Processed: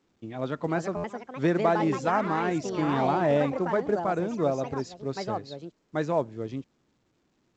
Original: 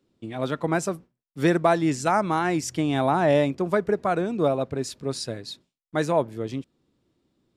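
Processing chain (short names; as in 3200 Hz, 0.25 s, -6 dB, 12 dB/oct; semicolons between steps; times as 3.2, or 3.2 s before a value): echoes that change speed 0.444 s, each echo +4 st, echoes 3, each echo -6 dB; high shelf 3000 Hz -9 dB; stuck buffer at 0.96, samples 512, times 6; gain -3.5 dB; A-law 128 kbps 16000 Hz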